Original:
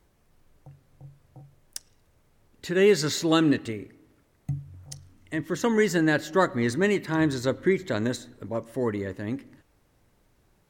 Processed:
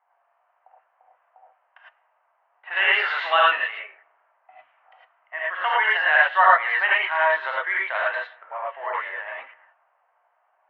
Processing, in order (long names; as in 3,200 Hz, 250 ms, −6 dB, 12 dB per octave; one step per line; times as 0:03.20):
0:02.67–0:03.46: converter with a step at zero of −35 dBFS
reverb whose tail is shaped and stops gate 130 ms rising, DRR −4.5 dB
low-pass that shuts in the quiet parts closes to 1,000 Hz, open at −15 dBFS
Chebyshev band-pass filter 700–3,000 Hz, order 4
level +7 dB